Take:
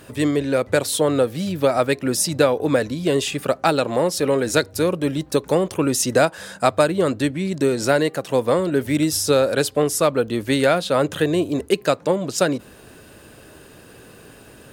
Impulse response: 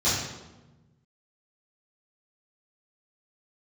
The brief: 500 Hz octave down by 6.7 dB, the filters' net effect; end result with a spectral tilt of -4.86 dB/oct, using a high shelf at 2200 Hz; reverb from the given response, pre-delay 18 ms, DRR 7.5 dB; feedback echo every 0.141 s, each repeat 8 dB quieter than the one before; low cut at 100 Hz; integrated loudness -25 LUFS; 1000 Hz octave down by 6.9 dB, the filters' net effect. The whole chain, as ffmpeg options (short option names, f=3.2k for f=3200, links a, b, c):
-filter_complex "[0:a]highpass=100,equalizer=f=500:t=o:g=-6,equalizer=f=1k:t=o:g=-7,highshelf=f=2.2k:g=-3.5,aecho=1:1:141|282|423|564|705:0.398|0.159|0.0637|0.0255|0.0102,asplit=2[a][b];[1:a]atrim=start_sample=2205,adelay=18[c];[b][c]afir=irnorm=-1:irlink=0,volume=-21.5dB[d];[a][d]amix=inputs=2:normalize=0,volume=-2dB"